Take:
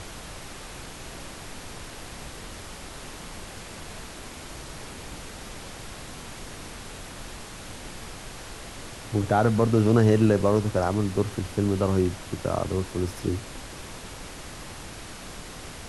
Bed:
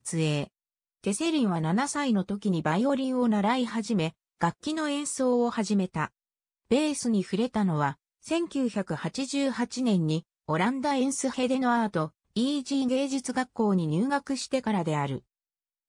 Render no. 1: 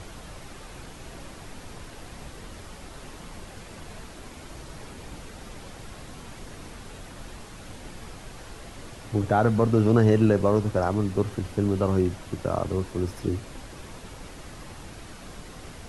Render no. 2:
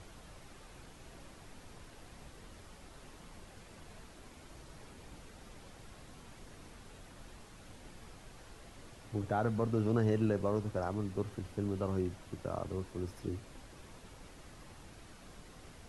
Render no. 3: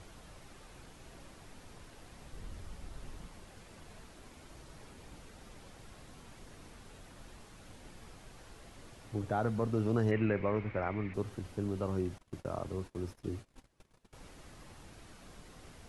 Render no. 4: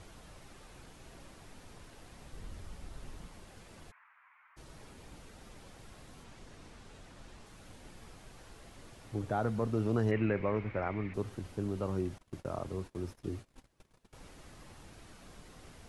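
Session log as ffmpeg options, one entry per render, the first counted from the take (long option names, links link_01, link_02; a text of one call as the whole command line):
ffmpeg -i in.wav -af "afftdn=noise_reduction=6:noise_floor=-41" out.wav
ffmpeg -i in.wav -af "volume=-11.5dB" out.wav
ffmpeg -i in.wav -filter_complex "[0:a]asettb=1/sr,asplit=3[link_01][link_02][link_03];[link_01]atrim=end=2.324[link_04];[link_02]atrim=start=2.32:end=3.27,asetpts=PTS-STARTPTS,afade=type=in:duration=0.004:curve=qsin,afade=type=out:start_time=0.946:duration=0.004:curve=qsin,lowshelf=frequency=140:gain=11.5[link_05];[link_03]atrim=start=3.266[link_06];[link_04][link_05]acrossfade=duration=0.004:curve1=hsin:curve2=qsin[link_07];[link_07][link_06]acrossfade=duration=0.004:curve1=qsin:curve2=hsin,asettb=1/sr,asplit=3[link_08][link_09][link_10];[link_08]atrim=end=10.114[link_11];[link_09]atrim=start=10.11:end=11.14,asetpts=PTS-STARTPTS,afade=type=in:duration=0.004:curve=qsin,afade=type=out:start_time=1.026:duration=0.004:curve=qsin,lowpass=frequency=2200:width_type=q:width=8.7[link_12];[link_10]atrim=start=11.136[link_13];[link_11][link_12]acrossfade=duration=0.004:curve1=hsin:curve2=qsin[link_14];[link_14][link_13]acrossfade=duration=0.004:curve1=qsin:curve2=hsin,asettb=1/sr,asplit=3[link_15][link_16][link_17];[link_15]atrim=end=12.184[link_18];[link_16]atrim=start=12.18:end=14.13,asetpts=PTS-STARTPTS,afade=type=in:duration=0.004:curve=qsin,afade=type=out:start_time=1.946:duration=0.004:curve=qsin,agate=range=-22dB:threshold=-50dB:ratio=16:release=100:detection=peak[link_19];[link_17]atrim=start=14.126[link_20];[link_18][link_19]acrossfade=duration=0.004:curve1=hsin:curve2=qsin[link_21];[link_21][link_20]acrossfade=duration=0.004:curve1=qsin:curve2=hsin" out.wav
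ffmpeg -i in.wav -filter_complex "[0:a]asplit=3[link_01][link_02][link_03];[link_01]afade=type=out:start_time=3.9:duration=0.02[link_04];[link_02]asuperpass=centerf=1500:order=8:qfactor=1.1,afade=type=in:start_time=3.9:duration=0.02,afade=type=out:start_time=4.56:duration=0.02[link_05];[link_03]afade=type=in:start_time=4.56:duration=0.02[link_06];[link_04][link_05][link_06]amix=inputs=3:normalize=0,asettb=1/sr,asplit=3[link_07][link_08][link_09];[link_07]atrim=end=6.244[link_10];[link_08]atrim=start=6.24:end=7.46,asetpts=PTS-STARTPTS,afade=type=in:duration=0.004:curve=qsin,afade=type=out:start_time=1.216:duration=0.004:curve=qsin,lowpass=8800[link_11];[link_09]atrim=start=7.456[link_12];[link_10][link_11]acrossfade=duration=0.004:curve1=hsin:curve2=qsin[link_13];[link_13][link_12]acrossfade=duration=0.004:curve1=qsin:curve2=hsin" out.wav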